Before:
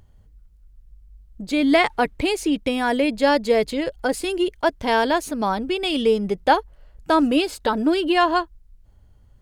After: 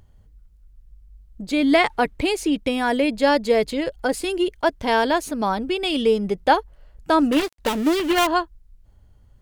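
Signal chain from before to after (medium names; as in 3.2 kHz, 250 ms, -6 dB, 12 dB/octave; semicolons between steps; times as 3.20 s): 7.32–8.27 s: dead-time distortion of 0.26 ms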